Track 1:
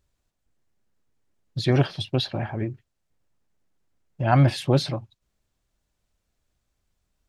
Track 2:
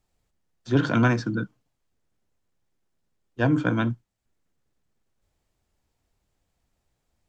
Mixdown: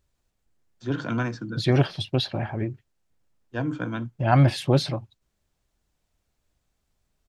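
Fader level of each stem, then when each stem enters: 0.0 dB, -6.5 dB; 0.00 s, 0.15 s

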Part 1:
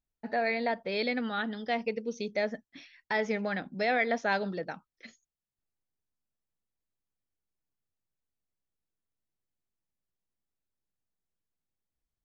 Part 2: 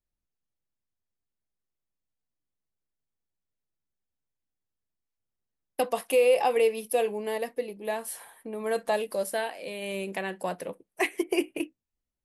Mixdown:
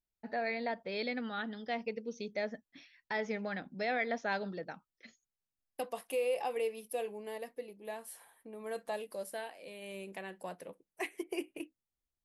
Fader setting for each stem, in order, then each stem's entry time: -6.0 dB, -11.5 dB; 0.00 s, 0.00 s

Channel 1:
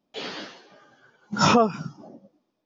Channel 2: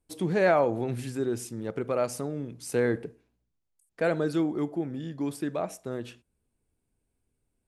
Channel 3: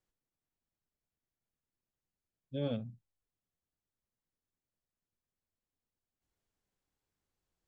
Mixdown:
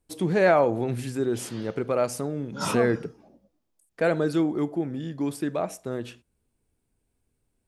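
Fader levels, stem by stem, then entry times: -10.5 dB, +3.0 dB, -4.5 dB; 1.20 s, 0.00 s, 0.00 s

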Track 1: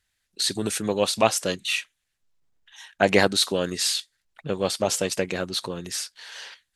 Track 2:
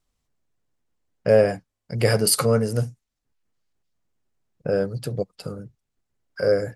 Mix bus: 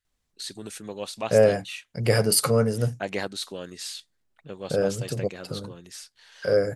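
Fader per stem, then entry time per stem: -11.5 dB, -1.5 dB; 0.00 s, 0.05 s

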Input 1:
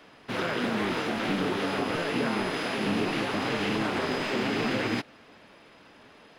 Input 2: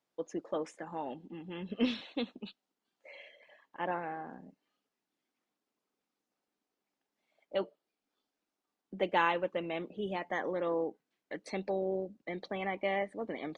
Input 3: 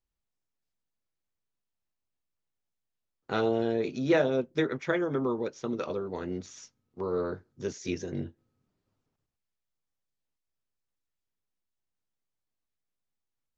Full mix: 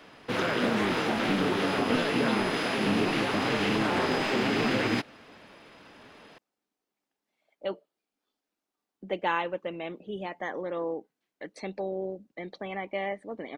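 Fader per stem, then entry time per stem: +1.5 dB, +0.5 dB, mute; 0.00 s, 0.10 s, mute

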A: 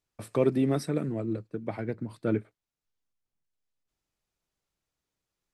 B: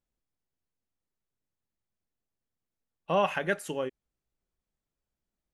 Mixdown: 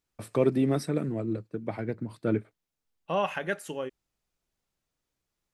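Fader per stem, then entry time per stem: +0.5 dB, -2.0 dB; 0.00 s, 0.00 s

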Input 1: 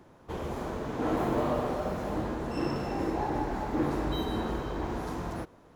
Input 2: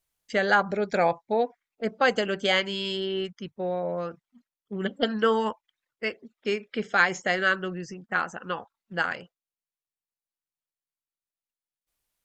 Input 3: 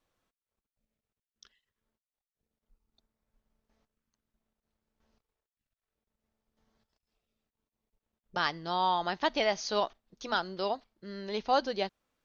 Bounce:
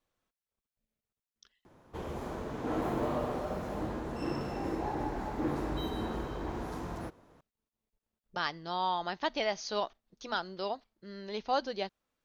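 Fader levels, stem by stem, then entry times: -4.0 dB, mute, -3.5 dB; 1.65 s, mute, 0.00 s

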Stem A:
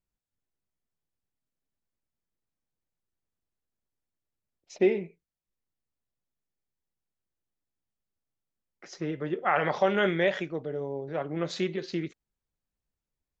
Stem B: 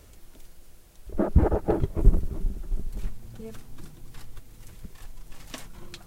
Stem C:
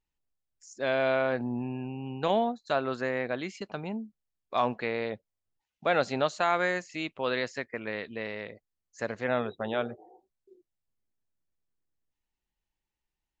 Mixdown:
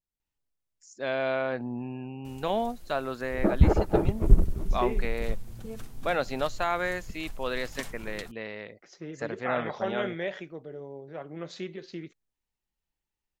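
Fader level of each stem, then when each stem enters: -7.5 dB, +0.5 dB, -2.0 dB; 0.00 s, 2.25 s, 0.20 s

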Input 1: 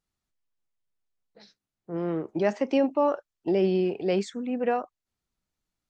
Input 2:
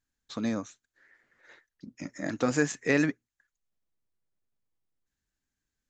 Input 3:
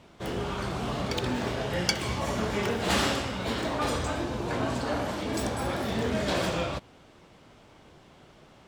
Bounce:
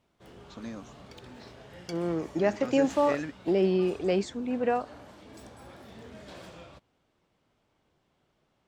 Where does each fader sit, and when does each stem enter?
-1.0 dB, -10.0 dB, -18.5 dB; 0.00 s, 0.20 s, 0.00 s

